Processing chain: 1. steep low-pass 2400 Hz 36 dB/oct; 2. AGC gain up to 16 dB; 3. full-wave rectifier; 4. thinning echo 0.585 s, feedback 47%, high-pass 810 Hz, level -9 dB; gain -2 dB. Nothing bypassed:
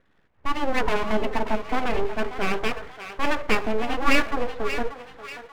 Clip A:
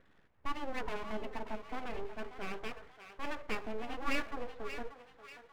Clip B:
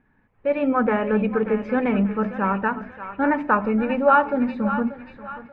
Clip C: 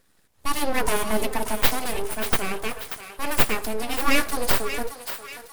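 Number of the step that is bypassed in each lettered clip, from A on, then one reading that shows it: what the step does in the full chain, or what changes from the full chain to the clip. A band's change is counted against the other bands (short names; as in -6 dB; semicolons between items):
2, loudness change -15.0 LU; 3, 2 kHz band -5.5 dB; 1, 4 kHz band +5.0 dB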